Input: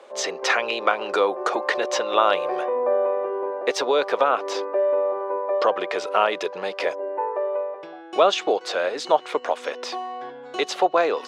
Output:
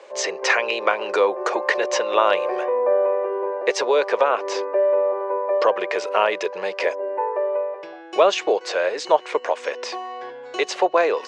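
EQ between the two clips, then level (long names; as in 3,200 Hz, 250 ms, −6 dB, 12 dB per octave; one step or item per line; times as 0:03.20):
dynamic equaliser 4,500 Hz, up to −4 dB, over −42 dBFS, Q 0.85
loudspeaker in its box 100–7,700 Hz, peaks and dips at 160 Hz −3 dB, 260 Hz −9 dB, 750 Hz −6 dB, 1,300 Hz −8 dB, 3,500 Hz −6 dB
low-shelf EQ 260 Hz −10 dB
+6.0 dB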